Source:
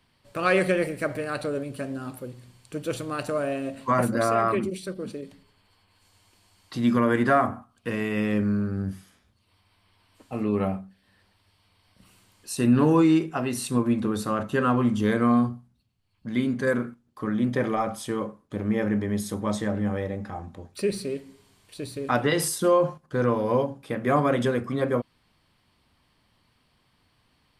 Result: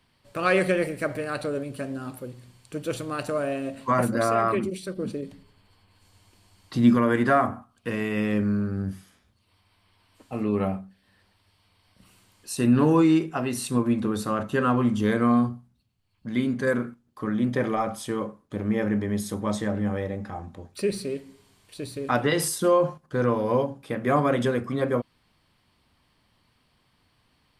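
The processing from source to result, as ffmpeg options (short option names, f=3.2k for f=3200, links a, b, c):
-filter_complex "[0:a]asettb=1/sr,asplit=3[a][b][c];[a]atrim=end=4.974[d];[b]atrim=start=4.97:end=6.95,asetpts=PTS-STARTPTS,afade=t=in:d=0.004:c=qsin,afade=t=out:st=1.976:d=0.004:c=qsin,lowshelf=f=410:g=6.5[e];[c]atrim=start=6.946[f];[d][e]acrossfade=d=0.004:c1=hsin:c2=qsin[g];[g][f]acrossfade=d=0.004:c1=qsin:c2=hsin"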